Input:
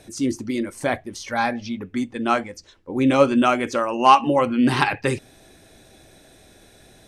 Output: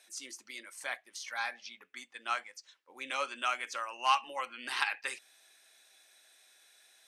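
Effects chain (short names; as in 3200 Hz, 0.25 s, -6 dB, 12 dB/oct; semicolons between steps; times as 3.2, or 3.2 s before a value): HPF 1400 Hz 12 dB/oct; gain -7.5 dB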